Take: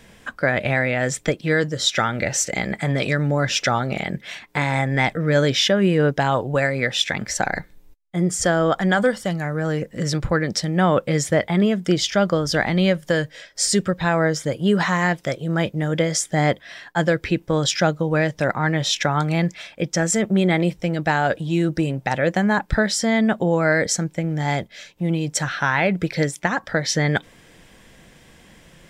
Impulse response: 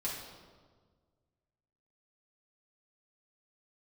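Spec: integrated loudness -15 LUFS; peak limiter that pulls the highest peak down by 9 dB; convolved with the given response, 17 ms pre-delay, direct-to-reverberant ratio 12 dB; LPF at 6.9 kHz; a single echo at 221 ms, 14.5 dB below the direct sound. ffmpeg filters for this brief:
-filter_complex "[0:a]lowpass=6900,alimiter=limit=0.158:level=0:latency=1,aecho=1:1:221:0.188,asplit=2[s0][s1];[1:a]atrim=start_sample=2205,adelay=17[s2];[s1][s2]afir=irnorm=-1:irlink=0,volume=0.178[s3];[s0][s3]amix=inputs=2:normalize=0,volume=3.35"

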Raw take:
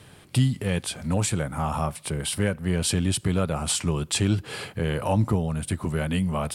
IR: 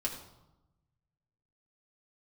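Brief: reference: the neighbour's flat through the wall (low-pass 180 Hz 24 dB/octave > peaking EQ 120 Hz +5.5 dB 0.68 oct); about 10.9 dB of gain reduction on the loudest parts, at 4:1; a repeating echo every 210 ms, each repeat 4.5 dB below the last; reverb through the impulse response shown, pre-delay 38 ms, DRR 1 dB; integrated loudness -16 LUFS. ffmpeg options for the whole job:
-filter_complex "[0:a]acompressor=threshold=0.0316:ratio=4,aecho=1:1:210|420|630|840|1050|1260|1470|1680|1890:0.596|0.357|0.214|0.129|0.0772|0.0463|0.0278|0.0167|0.01,asplit=2[s0][s1];[1:a]atrim=start_sample=2205,adelay=38[s2];[s1][s2]afir=irnorm=-1:irlink=0,volume=0.631[s3];[s0][s3]amix=inputs=2:normalize=0,lowpass=f=180:w=0.5412,lowpass=f=180:w=1.3066,equalizer=f=120:t=o:w=0.68:g=5.5,volume=5.01"

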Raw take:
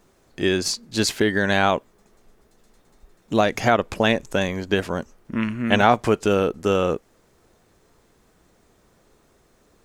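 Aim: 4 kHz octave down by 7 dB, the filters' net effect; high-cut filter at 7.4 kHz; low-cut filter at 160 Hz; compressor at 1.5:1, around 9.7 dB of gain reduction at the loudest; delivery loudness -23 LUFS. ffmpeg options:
-af "highpass=160,lowpass=7400,equalizer=f=4000:t=o:g=-9,acompressor=threshold=0.01:ratio=1.5,volume=2.66"

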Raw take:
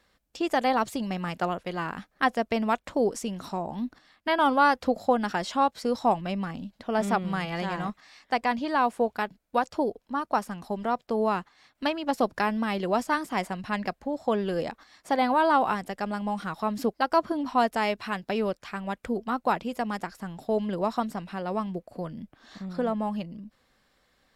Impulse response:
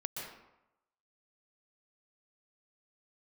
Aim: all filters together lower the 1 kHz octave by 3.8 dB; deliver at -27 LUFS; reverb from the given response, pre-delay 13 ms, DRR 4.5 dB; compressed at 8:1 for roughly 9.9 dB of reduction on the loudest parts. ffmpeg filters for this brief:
-filter_complex "[0:a]equalizer=f=1000:t=o:g=-5,acompressor=threshold=0.0316:ratio=8,asplit=2[s0][s1];[1:a]atrim=start_sample=2205,adelay=13[s2];[s1][s2]afir=irnorm=-1:irlink=0,volume=0.531[s3];[s0][s3]amix=inputs=2:normalize=0,volume=2.37"

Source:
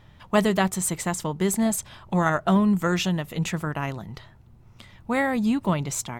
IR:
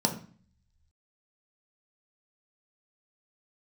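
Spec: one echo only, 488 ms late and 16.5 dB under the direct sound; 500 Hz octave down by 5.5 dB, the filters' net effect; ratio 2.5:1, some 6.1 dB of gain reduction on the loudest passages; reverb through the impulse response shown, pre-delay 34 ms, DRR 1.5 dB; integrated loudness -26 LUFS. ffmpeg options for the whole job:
-filter_complex "[0:a]equalizer=f=500:t=o:g=-7.5,acompressor=threshold=0.0447:ratio=2.5,aecho=1:1:488:0.15,asplit=2[s0][s1];[1:a]atrim=start_sample=2205,adelay=34[s2];[s1][s2]afir=irnorm=-1:irlink=0,volume=0.282[s3];[s0][s3]amix=inputs=2:normalize=0,volume=0.631"

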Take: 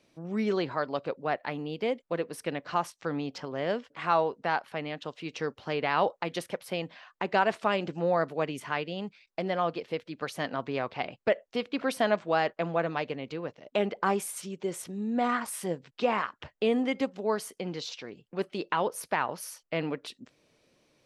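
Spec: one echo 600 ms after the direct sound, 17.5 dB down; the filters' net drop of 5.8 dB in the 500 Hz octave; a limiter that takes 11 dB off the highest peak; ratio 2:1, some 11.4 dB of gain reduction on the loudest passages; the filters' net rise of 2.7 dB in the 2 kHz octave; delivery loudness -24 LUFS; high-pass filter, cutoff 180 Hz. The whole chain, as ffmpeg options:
-af "highpass=180,equalizer=f=500:t=o:g=-7.5,equalizer=f=2000:t=o:g=4,acompressor=threshold=0.00708:ratio=2,alimiter=level_in=1.88:limit=0.0631:level=0:latency=1,volume=0.531,aecho=1:1:600:0.133,volume=9.44"

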